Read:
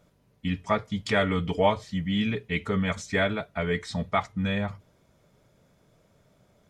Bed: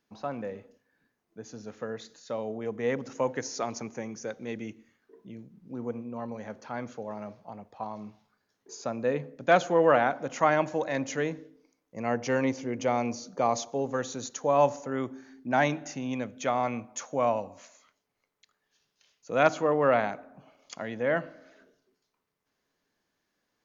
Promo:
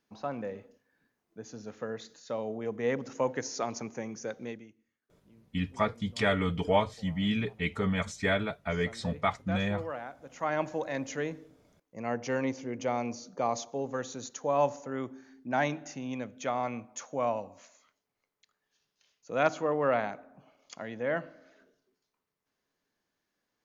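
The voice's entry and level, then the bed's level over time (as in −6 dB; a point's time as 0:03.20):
5.10 s, −3.0 dB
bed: 0:04.46 −1 dB
0:04.69 −16.5 dB
0:10.20 −16.5 dB
0:10.61 −4 dB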